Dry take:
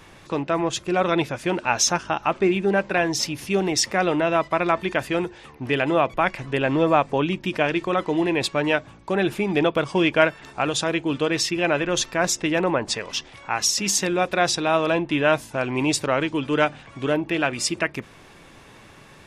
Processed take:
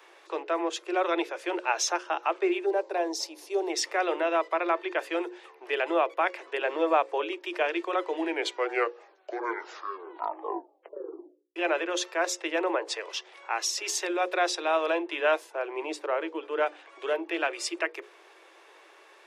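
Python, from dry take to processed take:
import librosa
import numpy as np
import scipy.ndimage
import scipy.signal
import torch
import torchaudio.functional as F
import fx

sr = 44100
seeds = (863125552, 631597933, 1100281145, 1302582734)

y = fx.band_shelf(x, sr, hz=2000.0, db=-10.5, octaves=1.7, at=(2.66, 3.7))
y = fx.air_absorb(y, sr, metres=78.0, at=(4.53, 4.99))
y = fx.high_shelf(y, sr, hz=2400.0, db=-11.5, at=(15.5, 16.65), fade=0.02)
y = fx.edit(y, sr, fx.tape_stop(start_s=8.09, length_s=3.47), tone=tone)
y = scipy.signal.sosfilt(scipy.signal.butter(16, 330.0, 'highpass', fs=sr, output='sos'), y)
y = fx.peak_eq(y, sr, hz=11000.0, db=-6.0, octaves=2.0)
y = fx.hum_notches(y, sr, base_hz=60, count=9)
y = y * librosa.db_to_amplitude(-4.5)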